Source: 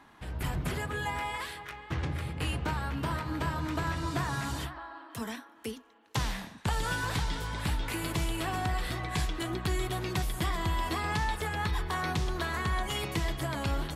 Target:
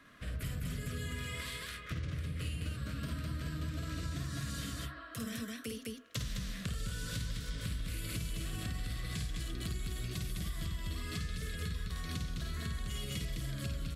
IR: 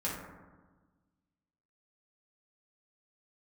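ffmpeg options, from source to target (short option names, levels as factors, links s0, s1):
-filter_complex "[0:a]asuperstop=centerf=860:order=4:qfactor=1.8,aecho=1:1:52.48|207:0.794|0.891,acrossover=split=370|3000[s0][s1][s2];[s1]acompressor=threshold=0.00501:ratio=3[s3];[s0][s3][s2]amix=inputs=3:normalize=0,equalizer=f=350:w=4.8:g=-10.5,acompressor=threshold=0.02:ratio=6,volume=0.891"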